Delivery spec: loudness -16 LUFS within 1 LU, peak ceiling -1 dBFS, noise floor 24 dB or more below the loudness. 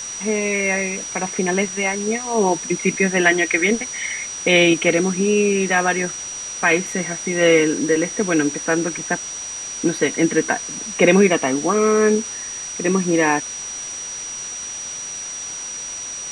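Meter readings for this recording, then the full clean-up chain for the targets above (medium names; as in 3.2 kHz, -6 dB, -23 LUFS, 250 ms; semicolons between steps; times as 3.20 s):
steady tone 5.8 kHz; tone level -28 dBFS; noise floor -30 dBFS; noise floor target -44 dBFS; loudness -19.5 LUFS; peak level -2.0 dBFS; loudness target -16.0 LUFS
-> band-stop 5.8 kHz, Q 30; noise print and reduce 14 dB; trim +3.5 dB; peak limiter -1 dBFS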